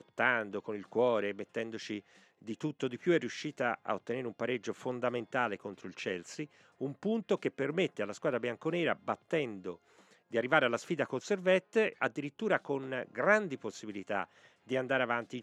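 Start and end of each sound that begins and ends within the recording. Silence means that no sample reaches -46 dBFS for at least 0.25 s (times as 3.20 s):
2.47–6.45 s
6.81–9.75 s
10.32–14.24 s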